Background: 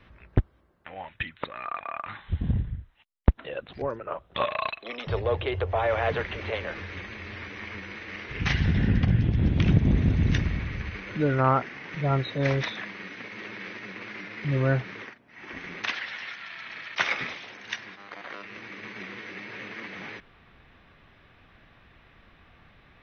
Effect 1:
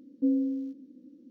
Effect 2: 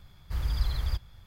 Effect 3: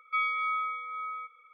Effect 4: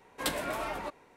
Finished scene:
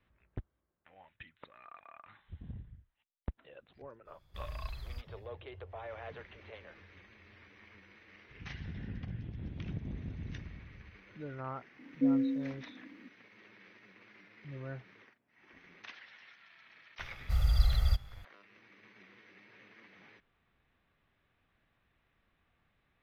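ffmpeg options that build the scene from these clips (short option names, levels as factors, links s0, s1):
-filter_complex "[2:a]asplit=2[s0][s1];[0:a]volume=0.106[s2];[s1]aecho=1:1:1.5:0.91[s3];[s0]atrim=end=1.26,asetpts=PTS-STARTPTS,volume=0.2,afade=t=in:d=0.05,afade=t=out:st=1.21:d=0.05,adelay=4040[s4];[1:a]atrim=end=1.3,asetpts=PTS-STARTPTS,volume=0.794,afade=t=in:d=0.004:c=hsin,afade=t=out:st=1.296:d=0.004:c=hsin,adelay=11790[s5];[s3]atrim=end=1.26,asetpts=PTS-STARTPTS,volume=0.668,afade=t=in:d=0.004:c=hsin,afade=t=out:st=1.256:d=0.004:c=hsin,adelay=16990[s6];[s2][s4][s5][s6]amix=inputs=4:normalize=0"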